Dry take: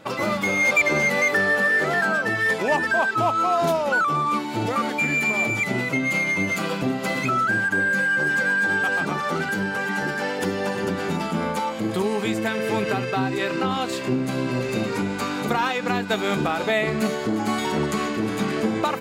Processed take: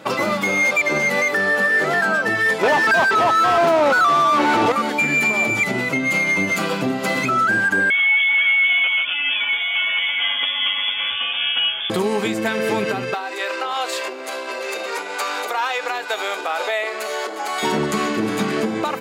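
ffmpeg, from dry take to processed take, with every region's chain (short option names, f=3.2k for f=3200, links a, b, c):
-filter_complex "[0:a]asettb=1/sr,asplit=3[a][b][c];[a]atrim=end=2.634[d];[b]atrim=start=2.63:end=4.72,asetpts=PTS-STARTPTS,afade=t=in:d=0.004:c=qsin,afade=t=out:st=2.086:d=0.004:c=qsin,asplit=2[e][f];[f]highpass=f=720:p=1,volume=29dB,asoftclip=type=tanh:threshold=-9.5dB[g];[e][g]amix=inputs=2:normalize=0,lowpass=f=1.3k:p=1,volume=-6dB,aecho=1:1:529:0.282,atrim=end_sample=92169[h];[c]atrim=start=4.716[i];[d][h]acrossfade=d=0.004:c1=hsin:c2=qsin[j];[j][i]acrossfade=d=0.004:c1=qsin:c2=hsin,asettb=1/sr,asplit=3[k][l][m];[k]atrim=end=7.904[n];[l]atrim=start=7.9:end=11.9,asetpts=PTS-STARTPTS,afade=t=in:d=0.004:c=qsin,afade=t=out:st=3.996:d=0.004:c=qsin,highpass=f=400:w=0.5412,highpass=f=400:w=1.3066,bandreject=f=2k:w=19,lowpass=f=3.2k:t=q:w=0.5098,lowpass=f=3.2k:t=q:w=0.6013,lowpass=f=3.2k:t=q:w=0.9,lowpass=f=3.2k:t=q:w=2.563,afreqshift=-3800[o];[m]atrim=start=11.896[p];[n][o]acrossfade=d=0.004:c1=hsin:c2=qsin[q];[q][p]acrossfade=d=0.004:c1=qsin:c2=hsin,asettb=1/sr,asplit=3[r][s][t];[r]atrim=end=13.144[u];[s]atrim=start=13.14:end=17.63,asetpts=PTS-STARTPTS,afade=t=in:d=0.004:c=qsin,afade=t=out:st=4.486:d=0.004:c=qsin,acompressor=threshold=-23dB:ratio=5:attack=3.2:release=140:knee=1:detection=peak,asoftclip=type=hard:threshold=-16.5dB,highpass=f=480:w=0.5412,highpass=f=480:w=1.3066[v];[t]atrim=start=17.626[w];[u][v]acrossfade=d=0.004:c1=hsin:c2=qsin[x];[x][w]acrossfade=d=0.004:c1=qsin:c2=hsin,alimiter=limit=-16dB:level=0:latency=1:release=408,highpass=84,lowshelf=f=110:g=-9,volume=6.5dB"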